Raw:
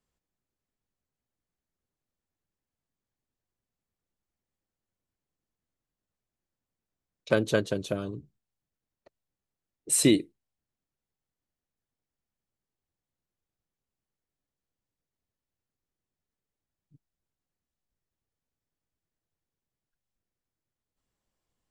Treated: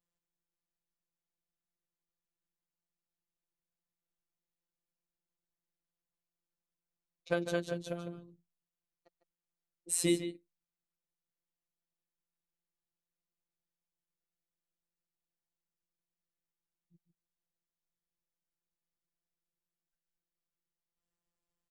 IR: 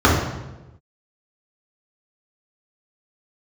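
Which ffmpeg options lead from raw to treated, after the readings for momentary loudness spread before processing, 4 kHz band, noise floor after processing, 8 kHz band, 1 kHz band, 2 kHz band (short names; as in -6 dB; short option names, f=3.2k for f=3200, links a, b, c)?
14 LU, -8.5 dB, under -85 dBFS, -8.0 dB, -5.5 dB, -7.5 dB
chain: -filter_complex "[0:a]asplit=2[a][b];[b]adelay=151.6,volume=-10dB,highshelf=f=4k:g=-3.41[c];[a][c]amix=inputs=2:normalize=0,afftfilt=real='hypot(re,im)*cos(PI*b)':imag='0':win_size=1024:overlap=0.75,volume=-5dB"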